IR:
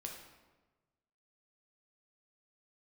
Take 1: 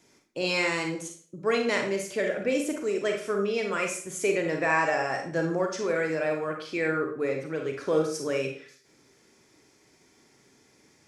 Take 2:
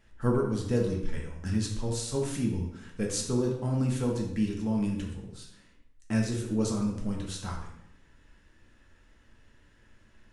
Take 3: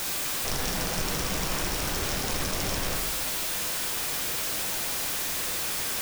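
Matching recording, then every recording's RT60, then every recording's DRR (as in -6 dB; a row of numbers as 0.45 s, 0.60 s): 3; 0.45 s, 0.80 s, 1.2 s; 2.0 dB, -1.0 dB, 0.5 dB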